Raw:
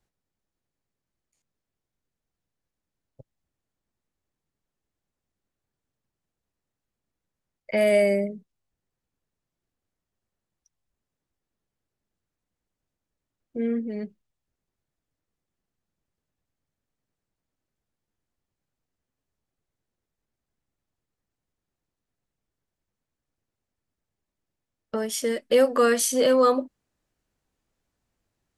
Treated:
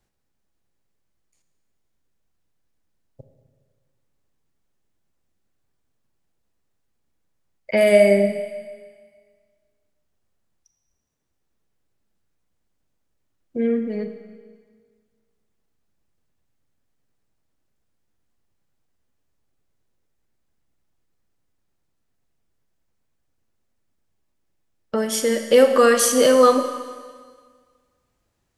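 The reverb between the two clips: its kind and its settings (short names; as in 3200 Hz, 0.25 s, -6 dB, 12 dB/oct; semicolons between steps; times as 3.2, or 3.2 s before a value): Schroeder reverb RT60 1.7 s, combs from 28 ms, DRR 7 dB; gain +5 dB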